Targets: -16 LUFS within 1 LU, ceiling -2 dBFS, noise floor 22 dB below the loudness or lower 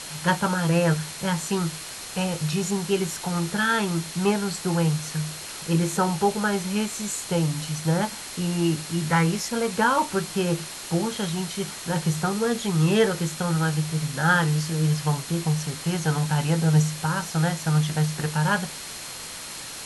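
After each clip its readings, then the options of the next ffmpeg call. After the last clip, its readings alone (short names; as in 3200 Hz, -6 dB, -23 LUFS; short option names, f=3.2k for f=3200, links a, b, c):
steady tone 4200 Hz; tone level -45 dBFS; noise floor -37 dBFS; noise floor target -47 dBFS; loudness -25.0 LUFS; peak -8.0 dBFS; loudness target -16.0 LUFS
-> -af "bandreject=f=4.2k:w=30"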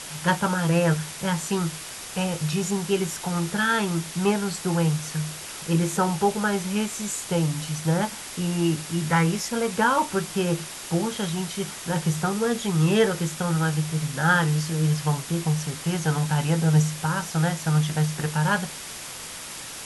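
steady tone none; noise floor -38 dBFS; noise floor target -47 dBFS
-> -af "afftdn=nr=9:nf=-38"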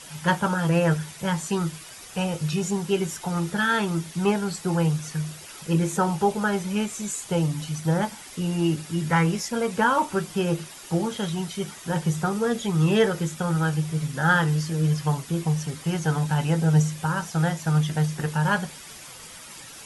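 noise floor -43 dBFS; noise floor target -47 dBFS
-> -af "afftdn=nr=6:nf=-43"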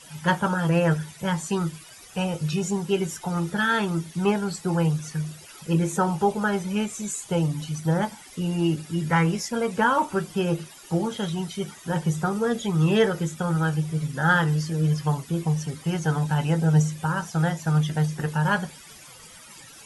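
noise floor -47 dBFS; loudness -25.0 LUFS; peak -8.5 dBFS; loudness target -16.0 LUFS
-> -af "volume=9dB,alimiter=limit=-2dB:level=0:latency=1"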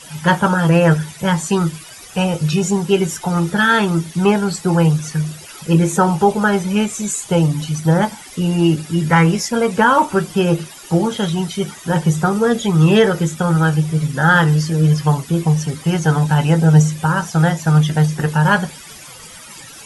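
loudness -16.0 LUFS; peak -2.0 dBFS; noise floor -38 dBFS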